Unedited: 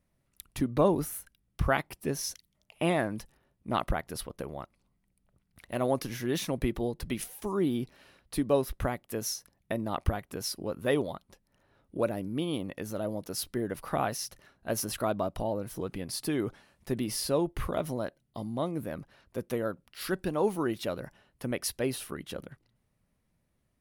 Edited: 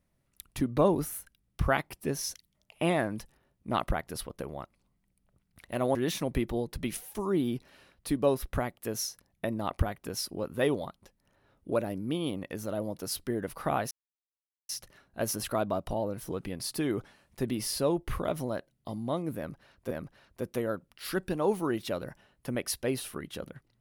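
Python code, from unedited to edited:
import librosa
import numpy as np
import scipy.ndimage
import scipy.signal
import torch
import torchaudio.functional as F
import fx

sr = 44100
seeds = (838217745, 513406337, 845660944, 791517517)

y = fx.edit(x, sr, fx.cut(start_s=5.95, length_s=0.27),
    fx.insert_silence(at_s=14.18, length_s=0.78),
    fx.repeat(start_s=18.87, length_s=0.53, count=2), tone=tone)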